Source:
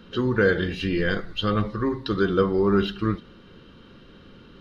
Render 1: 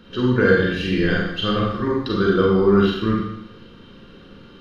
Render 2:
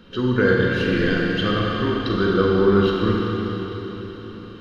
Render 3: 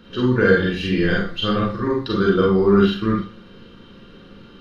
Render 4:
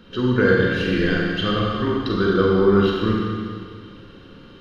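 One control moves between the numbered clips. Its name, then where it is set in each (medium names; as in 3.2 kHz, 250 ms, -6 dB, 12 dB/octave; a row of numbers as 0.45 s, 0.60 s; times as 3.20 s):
Schroeder reverb, RT60: 0.78 s, 4.4 s, 0.34 s, 2.1 s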